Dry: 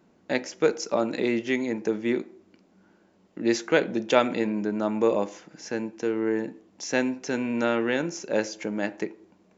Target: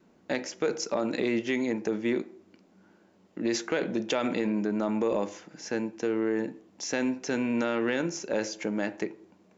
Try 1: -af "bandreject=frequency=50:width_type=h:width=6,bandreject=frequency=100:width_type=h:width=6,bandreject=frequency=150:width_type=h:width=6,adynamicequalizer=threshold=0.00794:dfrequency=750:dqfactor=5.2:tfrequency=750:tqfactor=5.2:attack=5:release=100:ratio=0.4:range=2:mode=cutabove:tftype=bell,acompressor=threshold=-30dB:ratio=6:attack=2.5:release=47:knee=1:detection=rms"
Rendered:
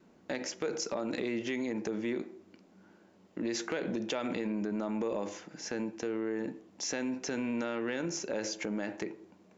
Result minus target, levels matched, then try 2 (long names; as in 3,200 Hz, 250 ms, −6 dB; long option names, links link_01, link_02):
downward compressor: peak gain reduction +6.5 dB
-af "bandreject=frequency=50:width_type=h:width=6,bandreject=frequency=100:width_type=h:width=6,bandreject=frequency=150:width_type=h:width=6,adynamicequalizer=threshold=0.00794:dfrequency=750:dqfactor=5.2:tfrequency=750:tqfactor=5.2:attack=5:release=100:ratio=0.4:range=2:mode=cutabove:tftype=bell,acompressor=threshold=-22dB:ratio=6:attack=2.5:release=47:knee=1:detection=rms"